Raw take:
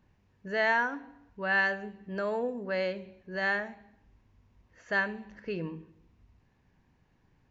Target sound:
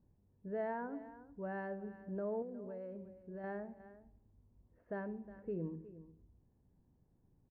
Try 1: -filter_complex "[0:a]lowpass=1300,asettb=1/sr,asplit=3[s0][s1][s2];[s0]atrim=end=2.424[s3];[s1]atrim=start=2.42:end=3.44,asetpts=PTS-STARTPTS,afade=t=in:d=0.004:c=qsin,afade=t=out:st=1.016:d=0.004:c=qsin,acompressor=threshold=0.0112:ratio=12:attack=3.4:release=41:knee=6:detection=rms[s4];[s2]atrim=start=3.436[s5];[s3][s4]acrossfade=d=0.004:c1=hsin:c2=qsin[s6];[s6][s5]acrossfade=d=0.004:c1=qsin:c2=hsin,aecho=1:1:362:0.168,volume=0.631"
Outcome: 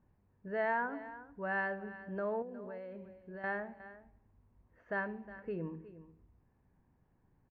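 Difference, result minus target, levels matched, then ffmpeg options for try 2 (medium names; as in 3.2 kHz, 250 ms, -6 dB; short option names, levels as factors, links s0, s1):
1 kHz band +3.0 dB
-filter_complex "[0:a]lowpass=540,asettb=1/sr,asplit=3[s0][s1][s2];[s0]atrim=end=2.424[s3];[s1]atrim=start=2.42:end=3.44,asetpts=PTS-STARTPTS,afade=t=in:d=0.004:c=qsin,afade=t=out:st=1.016:d=0.004:c=qsin,acompressor=threshold=0.0112:ratio=12:attack=3.4:release=41:knee=6:detection=rms[s4];[s2]atrim=start=3.436[s5];[s3][s4]acrossfade=d=0.004:c1=hsin:c2=qsin[s6];[s6][s5]acrossfade=d=0.004:c1=qsin:c2=hsin,aecho=1:1:362:0.168,volume=0.631"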